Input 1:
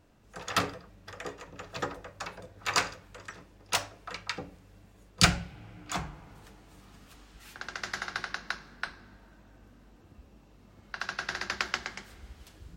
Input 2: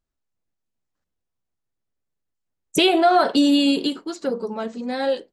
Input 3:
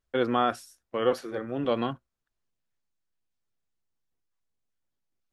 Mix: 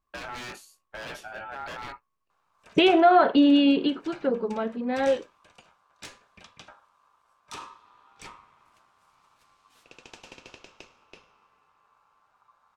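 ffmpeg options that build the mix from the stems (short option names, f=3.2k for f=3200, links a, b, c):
-filter_complex "[0:a]lowpass=12k,acontrast=50,equalizer=f=790:w=4.5:g=-9.5,adelay=2300,volume=-13dB[a];[1:a]lowpass=f=3k:w=0.5412,lowpass=f=3k:w=1.3066,volume=-1dB[b];[2:a]aeval=exprs='0.0531*(abs(mod(val(0)/0.0531+3,4)-2)-1)':c=same,flanger=delay=16.5:depth=5.4:speed=1,volume=3dB[c];[a][c]amix=inputs=2:normalize=0,aeval=exprs='val(0)*sin(2*PI*1100*n/s)':c=same,alimiter=level_in=4.5dB:limit=-24dB:level=0:latency=1:release=29,volume=-4.5dB,volume=0dB[d];[b][d]amix=inputs=2:normalize=0"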